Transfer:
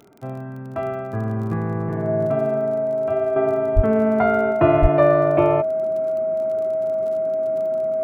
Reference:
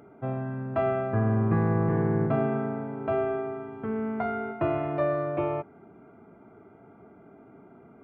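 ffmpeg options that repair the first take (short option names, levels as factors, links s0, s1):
-filter_complex "[0:a]adeclick=t=4,bandreject=f=640:w=30,asplit=3[s0][s1][s2];[s0]afade=t=out:st=3.75:d=0.02[s3];[s1]highpass=f=140:w=0.5412,highpass=f=140:w=1.3066,afade=t=in:st=3.75:d=0.02,afade=t=out:st=3.87:d=0.02[s4];[s2]afade=t=in:st=3.87:d=0.02[s5];[s3][s4][s5]amix=inputs=3:normalize=0,asplit=3[s6][s7][s8];[s6]afade=t=out:st=4.81:d=0.02[s9];[s7]highpass=f=140:w=0.5412,highpass=f=140:w=1.3066,afade=t=in:st=4.81:d=0.02,afade=t=out:st=4.93:d=0.02[s10];[s8]afade=t=in:st=4.93:d=0.02[s11];[s9][s10][s11]amix=inputs=3:normalize=0,asetnsamples=n=441:p=0,asendcmd='3.36 volume volume -10.5dB',volume=1"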